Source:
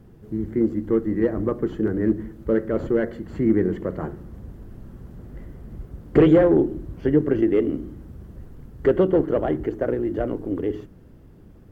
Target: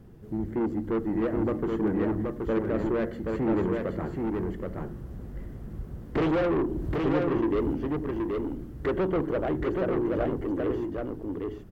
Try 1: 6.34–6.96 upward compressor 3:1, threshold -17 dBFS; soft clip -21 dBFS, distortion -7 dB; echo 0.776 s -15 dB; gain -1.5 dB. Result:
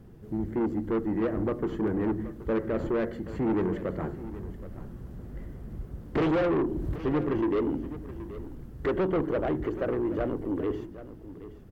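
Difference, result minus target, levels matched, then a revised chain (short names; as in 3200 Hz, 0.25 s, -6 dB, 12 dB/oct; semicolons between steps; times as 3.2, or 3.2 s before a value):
echo-to-direct -11.5 dB
6.34–6.96 upward compressor 3:1, threshold -17 dBFS; soft clip -21 dBFS, distortion -7 dB; echo 0.776 s -3.5 dB; gain -1.5 dB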